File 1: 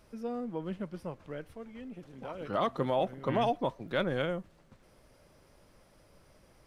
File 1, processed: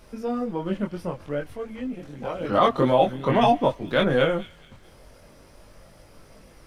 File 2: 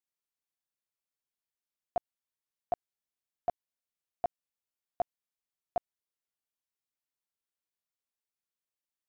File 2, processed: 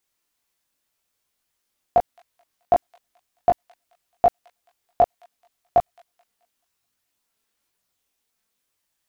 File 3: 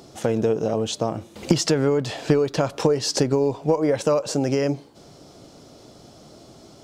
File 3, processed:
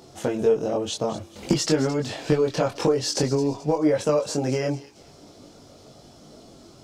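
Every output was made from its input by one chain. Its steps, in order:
feedback echo behind a high-pass 216 ms, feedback 37%, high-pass 2.8 kHz, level -13 dB; chorus voices 4, 0.49 Hz, delay 22 ms, depth 2.3 ms; normalise loudness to -24 LUFS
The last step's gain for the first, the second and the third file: +13.0 dB, +19.5 dB, +1.5 dB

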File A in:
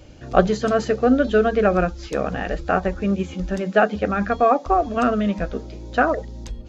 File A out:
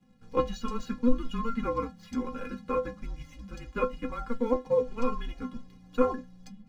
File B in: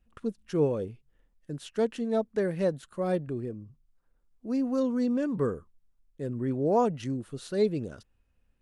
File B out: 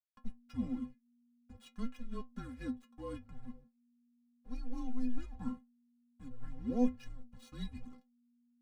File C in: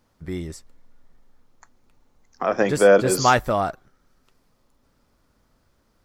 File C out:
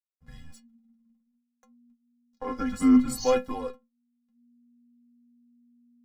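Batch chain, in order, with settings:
hysteresis with a dead band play -40 dBFS; frequency shift -240 Hz; inharmonic resonator 250 Hz, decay 0.2 s, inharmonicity 0.008; trim +2 dB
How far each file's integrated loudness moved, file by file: -11.0 LU, -12.0 LU, -5.0 LU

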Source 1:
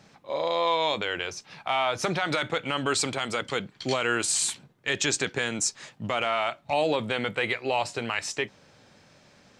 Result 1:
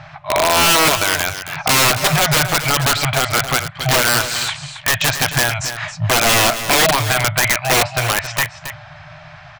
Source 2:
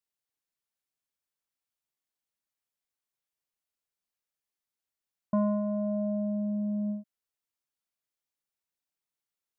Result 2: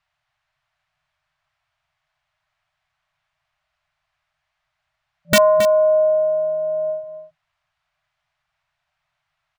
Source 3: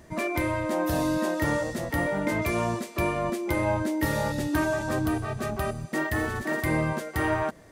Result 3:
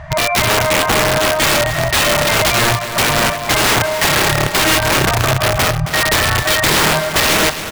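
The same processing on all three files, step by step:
FFT band-reject 170–590 Hz; low-pass 2.3 kHz 12 dB/octave; peaking EQ 880 Hz -3 dB 0.25 oct; in parallel at +1.5 dB: compression 6:1, threshold -40 dBFS; on the sum: integer overflow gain 23 dB; on a send: delay 271 ms -11 dB; on the sum: peak normalisation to -6 dBFS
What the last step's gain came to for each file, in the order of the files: +15.0 dB, +17.0 dB, +15.0 dB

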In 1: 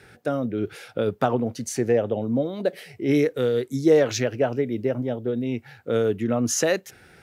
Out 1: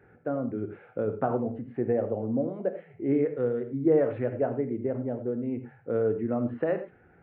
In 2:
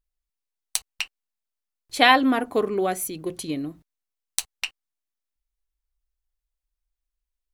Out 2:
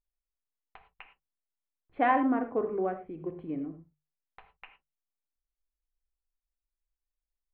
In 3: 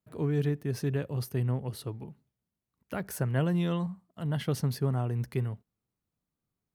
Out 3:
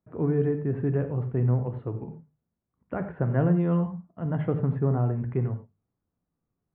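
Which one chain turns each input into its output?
Gaussian low-pass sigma 5.2 samples; hum notches 50/100/150/200 Hz; gated-style reverb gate 130 ms flat, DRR 7.5 dB; peak normalisation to -12 dBFS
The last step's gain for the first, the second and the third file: -4.5 dB, -6.5 dB, +5.0 dB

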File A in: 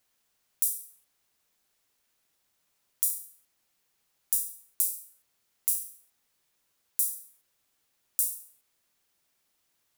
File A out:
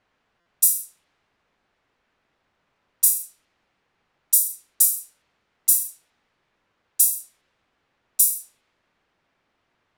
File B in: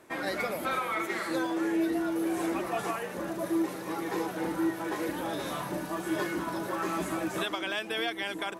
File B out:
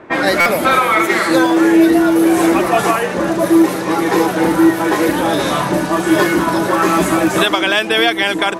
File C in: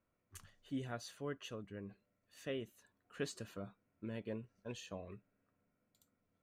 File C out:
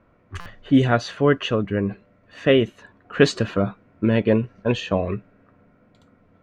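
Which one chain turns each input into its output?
level-controlled noise filter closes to 2 kHz, open at -28.5 dBFS; buffer glitch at 0.40 s, samples 256, times 9; peak normalisation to -1.5 dBFS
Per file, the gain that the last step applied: +12.5 dB, +18.0 dB, +25.5 dB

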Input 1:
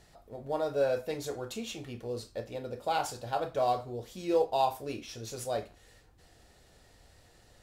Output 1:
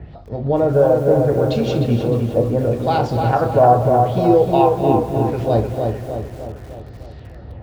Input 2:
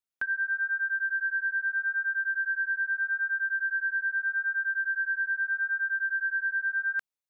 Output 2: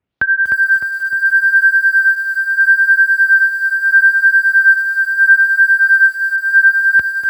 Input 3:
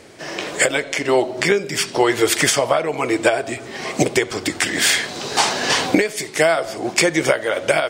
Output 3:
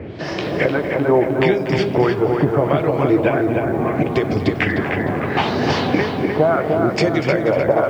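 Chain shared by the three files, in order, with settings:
high-pass 62 Hz 24 dB/octave; tilt EQ -4.5 dB/octave; compression 2:1, threshold -28 dBFS; harmonic tremolo 1.6 Hz, depth 50%, crossover 720 Hz; LFO low-pass sine 0.75 Hz 870–5100 Hz; on a send: filtered feedback delay 305 ms, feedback 56%, low-pass 3.1 kHz, level -4 dB; on the sum: bit-crushed delay 241 ms, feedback 35%, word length 8-bit, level -13 dB; peak normalisation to -1.5 dBFS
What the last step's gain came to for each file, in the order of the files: +14.5 dB, +19.0 dB, +7.0 dB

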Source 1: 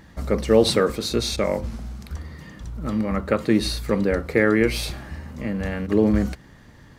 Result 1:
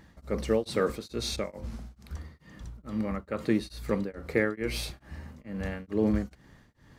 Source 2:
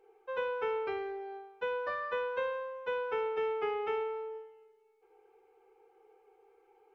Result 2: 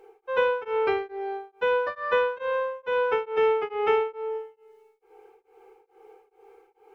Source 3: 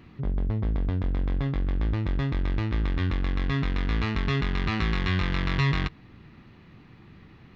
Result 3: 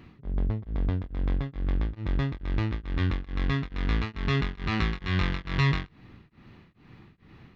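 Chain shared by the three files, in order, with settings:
tremolo of two beating tones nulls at 2.3 Hz; peak normalisation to -12 dBFS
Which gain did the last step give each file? -6.0 dB, +12.0 dB, +0.5 dB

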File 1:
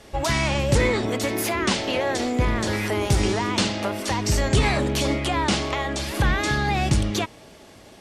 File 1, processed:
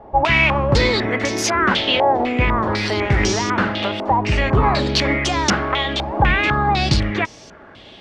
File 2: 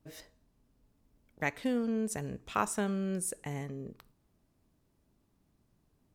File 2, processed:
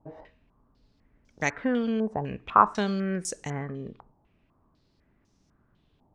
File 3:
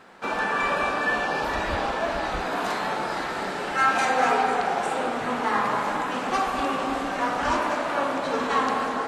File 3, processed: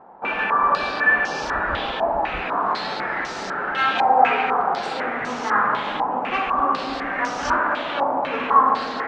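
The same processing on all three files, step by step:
step-sequenced low-pass 4 Hz 850–5900 Hz; peak normalisation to -3 dBFS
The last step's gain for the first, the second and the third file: +3.0 dB, +4.5 dB, -1.0 dB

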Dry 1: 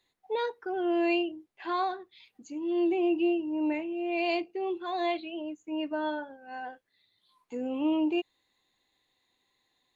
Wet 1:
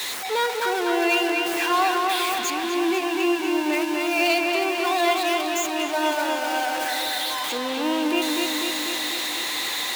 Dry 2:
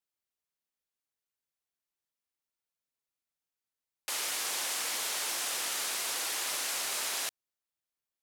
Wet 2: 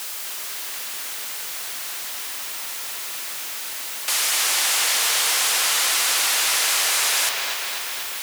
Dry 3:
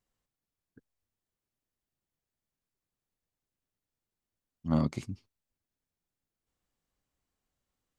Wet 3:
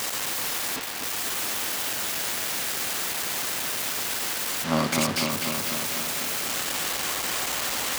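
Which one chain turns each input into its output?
jump at every zero crossing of -31.5 dBFS; high-pass 990 Hz 6 dB/octave; on a send: feedback echo behind a low-pass 247 ms, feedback 68%, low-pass 4 kHz, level -3 dB; on the sum: peak normalisation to -9 dBFS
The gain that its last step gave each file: +9.5 dB, +9.0 dB, +12.5 dB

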